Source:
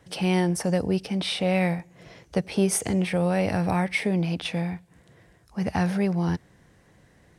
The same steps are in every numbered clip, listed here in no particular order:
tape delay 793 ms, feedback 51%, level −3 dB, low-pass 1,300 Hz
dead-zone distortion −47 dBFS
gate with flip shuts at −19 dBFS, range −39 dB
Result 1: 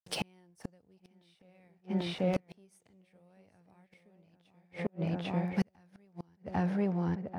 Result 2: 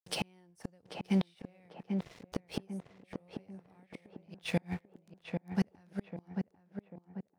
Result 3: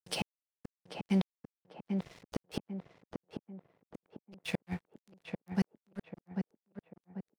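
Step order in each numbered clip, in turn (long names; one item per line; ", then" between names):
dead-zone distortion, then tape delay, then gate with flip
dead-zone distortion, then gate with flip, then tape delay
gate with flip, then dead-zone distortion, then tape delay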